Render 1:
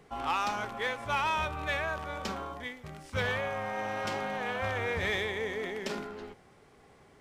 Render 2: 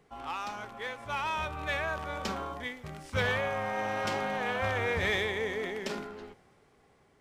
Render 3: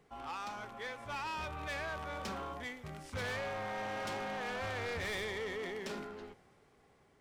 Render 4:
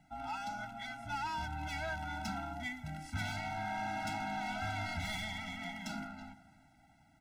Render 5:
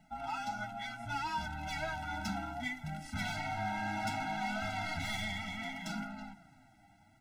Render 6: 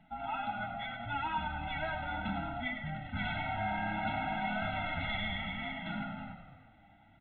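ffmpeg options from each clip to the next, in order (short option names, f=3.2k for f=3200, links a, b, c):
-af "dynaudnorm=f=350:g=9:m=8.5dB,volume=-6.5dB"
-af "asoftclip=type=tanh:threshold=-33dB,volume=-2.5dB"
-filter_complex "[0:a]asplit=2[a][b];[b]adelay=349.9,volume=-20dB,highshelf=f=4k:g=-7.87[c];[a][c]amix=inputs=2:normalize=0,afftfilt=real='re*eq(mod(floor(b*sr/1024/320),2),0)':imag='im*eq(mod(floor(b*sr/1024/320),2),0)':win_size=1024:overlap=0.75,volume=4dB"
-af "flanger=delay=4.6:depth=5.4:regen=27:speed=0.65:shape=sinusoidal,volume=5.5dB"
-filter_complex "[0:a]asplit=2[a][b];[b]asplit=6[c][d][e][f][g][h];[c]adelay=101,afreqshift=-34,volume=-8dB[i];[d]adelay=202,afreqshift=-68,volume=-13.5dB[j];[e]adelay=303,afreqshift=-102,volume=-19dB[k];[f]adelay=404,afreqshift=-136,volume=-24.5dB[l];[g]adelay=505,afreqshift=-170,volume=-30.1dB[m];[h]adelay=606,afreqshift=-204,volume=-35.6dB[n];[i][j][k][l][m][n]amix=inputs=6:normalize=0[o];[a][o]amix=inputs=2:normalize=0,volume=1dB" -ar 8000 -c:a pcm_mulaw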